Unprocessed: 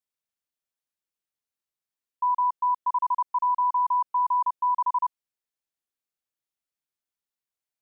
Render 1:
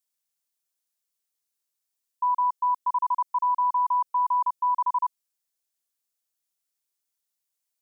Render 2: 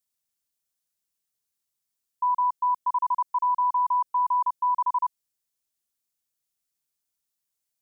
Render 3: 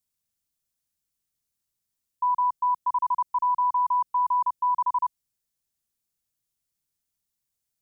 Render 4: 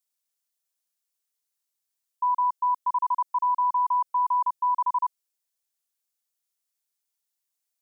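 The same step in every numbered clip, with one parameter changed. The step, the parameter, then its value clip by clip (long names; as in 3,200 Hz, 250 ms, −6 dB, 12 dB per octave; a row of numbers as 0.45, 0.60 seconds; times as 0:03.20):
bass and treble, bass: −5, +5, +14, −15 decibels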